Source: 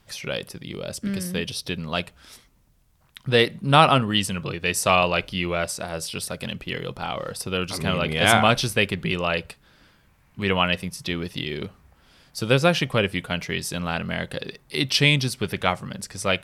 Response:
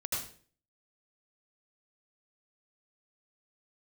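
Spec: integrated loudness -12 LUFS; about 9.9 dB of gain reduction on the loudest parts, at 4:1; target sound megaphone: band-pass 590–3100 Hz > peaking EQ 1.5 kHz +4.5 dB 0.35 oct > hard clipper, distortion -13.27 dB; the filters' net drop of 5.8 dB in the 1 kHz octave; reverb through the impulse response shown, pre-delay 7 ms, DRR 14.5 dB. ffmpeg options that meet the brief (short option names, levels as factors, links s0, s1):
-filter_complex "[0:a]equalizer=f=1000:t=o:g=-9,acompressor=threshold=0.0501:ratio=4,asplit=2[s0][s1];[1:a]atrim=start_sample=2205,adelay=7[s2];[s1][s2]afir=irnorm=-1:irlink=0,volume=0.126[s3];[s0][s3]amix=inputs=2:normalize=0,highpass=590,lowpass=3100,equalizer=f=1500:t=o:w=0.35:g=4.5,asoftclip=type=hard:threshold=0.0596,volume=15.8"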